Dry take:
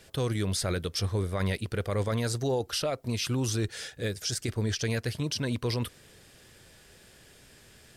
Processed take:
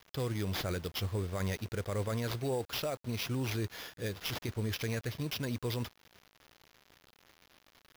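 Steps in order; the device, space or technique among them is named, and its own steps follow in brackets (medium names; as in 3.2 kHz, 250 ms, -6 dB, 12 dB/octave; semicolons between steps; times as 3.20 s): early 8-bit sampler (sample-rate reducer 8.4 kHz, jitter 0%; bit crusher 8-bit); trim -5.5 dB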